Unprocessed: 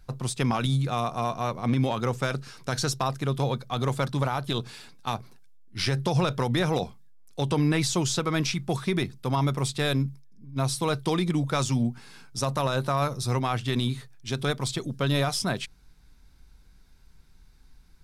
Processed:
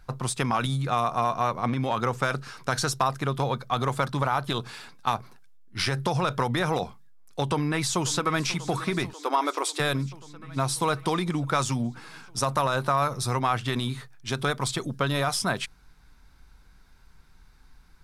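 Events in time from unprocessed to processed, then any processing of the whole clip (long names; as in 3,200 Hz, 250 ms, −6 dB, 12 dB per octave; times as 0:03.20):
0:07.42–0:08.50: delay throw 540 ms, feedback 75%, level −17.5 dB
0:09.13–0:09.80: linear-phase brick-wall high-pass 270 Hz
whole clip: dynamic equaliser 10,000 Hz, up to +5 dB, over −47 dBFS, Q 1; downward compressor, threshold −24 dBFS; parametric band 1,200 Hz +8 dB 1.8 octaves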